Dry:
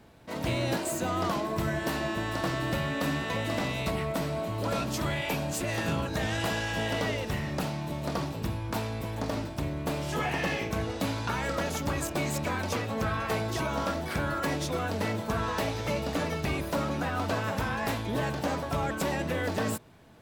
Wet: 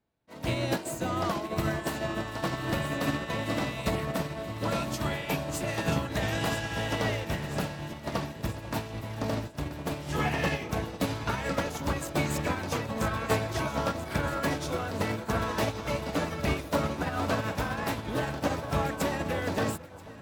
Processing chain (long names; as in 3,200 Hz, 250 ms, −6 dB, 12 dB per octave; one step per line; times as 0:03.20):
delay that swaps between a low-pass and a high-pass 492 ms, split 1,200 Hz, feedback 83%, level −8 dB
expander for the loud parts 2.5 to 1, over −45 dBFS
level +4 dB